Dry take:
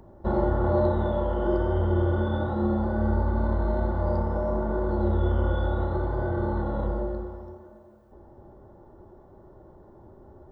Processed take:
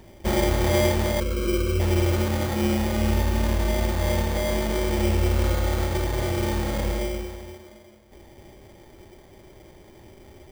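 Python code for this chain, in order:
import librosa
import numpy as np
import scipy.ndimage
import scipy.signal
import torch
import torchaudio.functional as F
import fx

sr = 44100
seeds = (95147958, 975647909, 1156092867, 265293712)

y = fx.ellip_bandstop(x, sr, low_hz=540.0, high_hz=1100.0, order=3, stop_db=40, at=(1.2, 1.8))
y = fx.sample_hold(y, sr, seeds[0], rate_hz=2700.0, jitter_pct=0)
y = y * 10.0 ** (2.0 / 20.0)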